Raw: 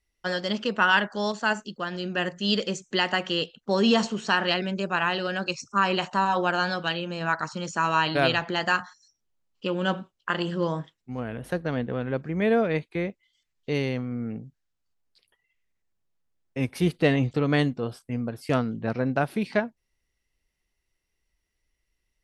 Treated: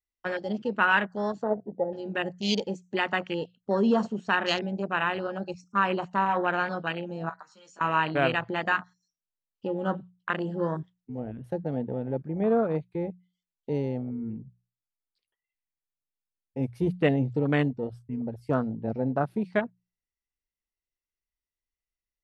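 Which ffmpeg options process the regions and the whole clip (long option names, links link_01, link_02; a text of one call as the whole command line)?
ffmpeg -i in.wav -filter_complex "[0:a]asettb=1/sr,asplit=3[link_01][link_02][link_03];[link_01]atrim=end=1.434[link_04];[link_02]atrim=start=1.43:end=1.93,asetpts=PTS-STARTPTS,afade=type=in:duration=0.004:curve=qsin,afade=type=out:start_time=0.496:duration=0.004:curve=qsin,lowpass=frequency=520:width_type=q:width=5.4,bandreject=frequency=97.53:width_type=h:width=4,bandreject=frequency=195.06:width_type=h:width=4,bandreject=frequency=292.59:width_type=h:width=4,bandreject=frequency=390.12:width_type=h:width=4,bandreject=frequency=487.65:width_type=h:width=4,bandreject=frequency=585.18:width_type=h:width=4,bandreject=frequency=682.71:width_type=h:width=4,bandreject=frequency=780.24:width_type=h:width=4[link_05];[link_03]atrim=start=1.926[link_06];[link_04][link_05]acrossfade=duration=0.004:curve1=hsin:curve2=qsin[link_07];[link_07][link_06]acrossfade=duration=0.004:curve1=qsin:curve2=hsin,asettb=1/sr,asplit=3[link_08][link_09][link_10];[link_08]atrim=end=7.294[link_11];[link_09]atrim=start=7.29:end=7.81,asetpts=PTS-STARTPTS,afade=type=in:duration=0.004:curve=qsin,afade=type=out:start_time=0.516:duration=0.004:curve=qsin,highpass=frequency=580:poles=1,acompressor=threshold=-32dB:ratio=12:attack=3.2:release=140:knee=1:detection=peak,asplit=2[link_12][link_13];[link_13]adelay=15,volume=-3dB[link_14];[link_12][link_14]amix=inputs=2:normalize=0,atrim=end_sample=22932[link_15];[link_10]atrim=start=7.806[link_16];[link_11][link_15]acrossfade=duration=0.004:curve1=hsin:curve2=qsin[link_17];[link_17][link_16]acrossfade=duration=0.004:curve1=qsin:curve2=hsin,afwtdn=0.0398,bandreject=frequency=60:width_type=h:width=6,bandreject=frequency=120:width_type=h:width=6,bandreject=frequency=180:width_type=h:width=6,volume=-1.5dB" out.wav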